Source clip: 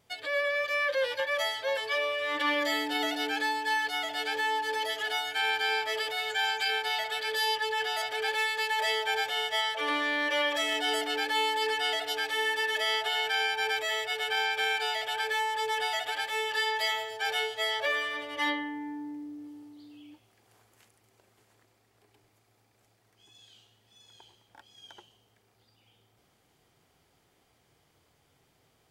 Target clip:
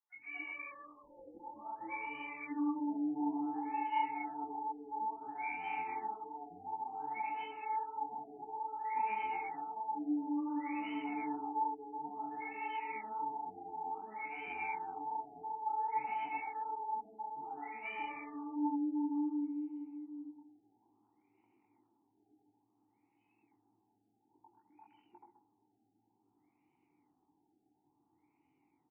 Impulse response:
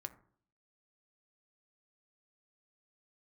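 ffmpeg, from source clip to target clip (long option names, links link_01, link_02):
-filter_complex "[0:a]highshelf=frequency=3300:gain=-8.5,aeval=exprs='clip(val(0),-1,0.0141)':channel_layout=same,flanger=delay=20:depth=4.4:speed=2.6,asplit=3[link_01][link_02][link_03];[link_01]bandpass=frequency=300:width_type=q:width=8,volume=0dB[link_04];[link_02]bandpass=frequency=870:width_type=q:width=8,volume=-6dB[link_05];[link_03]bandpass=frequency=2240:width_type=q:width=8,volume=-9dB[link_06];[link_04][link_05][link_06]amix=inputs=3:normalize=0,acrossover=split=430|1500[link_07][link_08][link_09];[link_07]adelay=150[link_10];[link_08]adelay=240[link_11];[link_10][link_11][link_09]amix=inputs=3:normalize=0,asplit=2[link_12][link_13];[1:a]atrim=start_sample=2205,adelay=128[link_14];[link_13][link_14]afir=irnorm=-1:irlink=0,volume=-6dB[link_15];[link_12][link_15]amix=inputs=2:normalize=0,afftfilt=real='re*lt(b*sr/1024,830*pow(3100/830,0.5+0.5*sin(2*PI*0.57*pts/sr)))':imag='im*lt(b*sr/1024,830*pow(3100/830,0.5+0.5*sin(2*PI*0.57*pts/sr)))':win_size=1024:overlap=0.75,volume=10.5dB"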